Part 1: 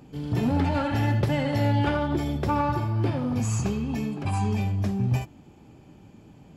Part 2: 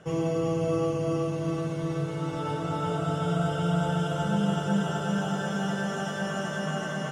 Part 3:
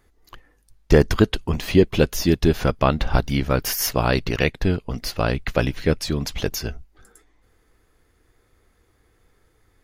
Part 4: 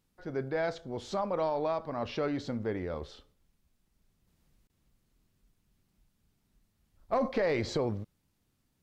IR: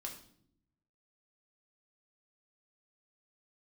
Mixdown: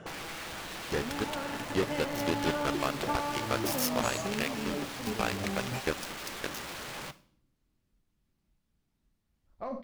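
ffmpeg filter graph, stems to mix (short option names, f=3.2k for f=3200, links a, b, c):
-filter_complex "[0:a]highpass=250,acompressor=threshold=-38dB:ratio=2,adelay=600,volume=-6dB[a];[1:a]aeval=exprs='(mod(29.9*val(0)+1,2)-1)/29.9':c=same,volume=3dB,asplit=2[b][c];[c]volume=-17dB[d];[2:a]lowshelf=f=410:g=-11,flanger=delay=8.1:depth=6.3:regen=85:speed=0.48:shape=triangular,acrusher=bits=3:mix=0:aa=0.5,volume=-10dB,asplit=2[e][f];[3:a]adelay=2500,volume=-6.5dB,asplit=2[g][h];[h]volume=-3.5dB[i];[f]apad=whole_len=316161[j];[a][j]sidechaingate=range=-33dB:threshold=-59dB:ratio=16:detection=peak[k];[b][g]amix=inputs=2:normalize=0,highshelf=f=6.7k:g=-9.5,acompressor=threshold=-42dB:ratio=6,volume=0dB[l];[k][e]amix=inputs=2:normalize=0,dynaudnorm=f=330:g=11:m=9dB,alimiter=limit=-17dB:level=0:latency=1:release=239,volume=0dB[m];[4:a]atrim=start_sample=2205[n];[d][i]amix=inputs=2:normalize=0[o];[o][n]afir=irnorm=-1:irlink=0[p];[l][m][p]amix=inputs=3:normalize=0"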